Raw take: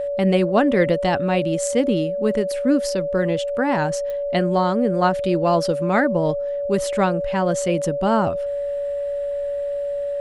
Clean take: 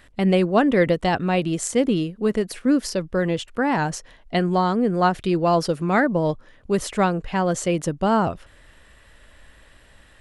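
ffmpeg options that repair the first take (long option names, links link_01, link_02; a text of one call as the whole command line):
ffmpeg -i in.wav -af "adeclick=threshold=4,bandreject=frequency=570:width=30" out.wav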